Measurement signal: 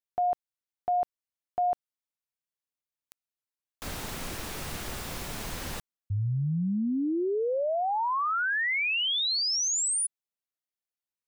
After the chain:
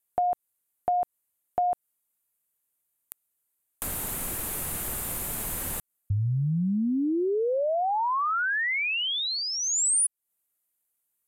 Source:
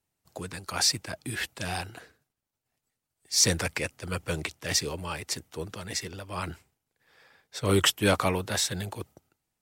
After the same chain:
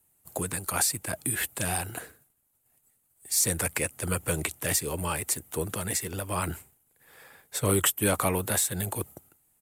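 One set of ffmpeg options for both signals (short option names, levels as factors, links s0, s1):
-af "aexciter=amount=8.3:drive=5.5:freq=7600,acompressor=threshold=0.0158:ratio=2:attack=62:release=164:knee=1:detection=rms,highshelf=f=3500:g=-6.5,aresample=32000,aresample=44100,volume=2.24"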